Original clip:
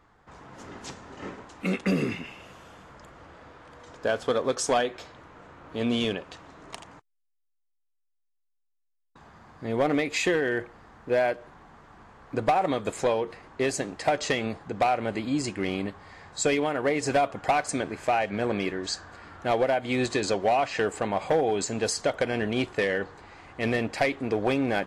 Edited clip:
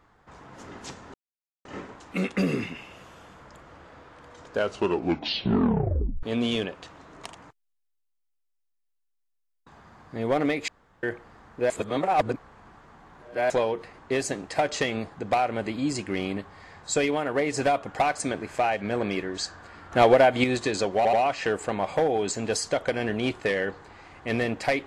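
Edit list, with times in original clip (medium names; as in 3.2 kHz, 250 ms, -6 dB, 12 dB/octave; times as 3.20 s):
1.14 s: insert silence 0.51 s
4.01 s: tape stop 1.71 s
10.17–10.52 s: room tone
11.19–12.99 s: reverse
19.41–19.93 s: gain +7 dB
20.46 s: stutter 0.08 s, 3 plays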